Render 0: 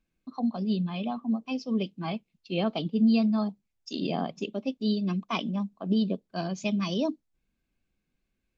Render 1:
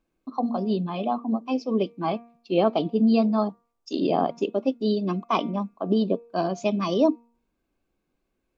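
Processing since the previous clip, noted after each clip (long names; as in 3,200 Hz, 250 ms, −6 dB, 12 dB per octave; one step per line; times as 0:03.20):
flat-topped bell 600 Hz +9.5 dB 2.5 octaves
hum removal 234.7 Hz, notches 11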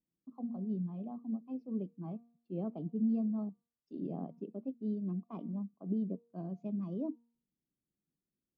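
resonant band-pass 160 Hz, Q 1.9
level −7 dB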